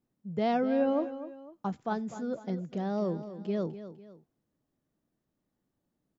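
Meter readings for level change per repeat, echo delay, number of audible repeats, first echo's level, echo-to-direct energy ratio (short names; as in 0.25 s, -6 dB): -8.0 dB, 0.25 s, 2, -12.5 dB, -12.0 dB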